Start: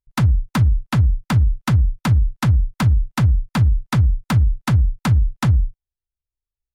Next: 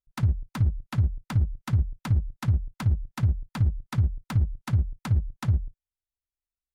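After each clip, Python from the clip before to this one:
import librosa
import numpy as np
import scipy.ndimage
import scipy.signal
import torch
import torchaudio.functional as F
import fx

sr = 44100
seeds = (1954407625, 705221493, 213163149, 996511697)

y = fx.level_steps(x, sr, step_db=13)
y = F.gain(torch.from_numpy(y), -5.5).numpy()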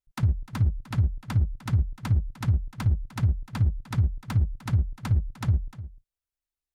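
y = x + 10.0 ** (-15.5 / 20.0) * np.pad(x, (int(302 * sr / 1000.0), 0))[:len(x)]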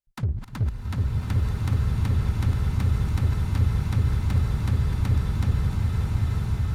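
y = fx.reverse_delay(x, sr, ms=155, wet_db=-9)
y = fx.cheby_harmonics(y, sr, harmonics=(6,), levels_db=(-24,), full_scale_db=-12.0)
y = fx.rev_bloom(y, sr, seeds[0], attack_ms=1320, drr_db=-4.0)
y = F.gain(torch.from_numpy(y), -3.0).numpy()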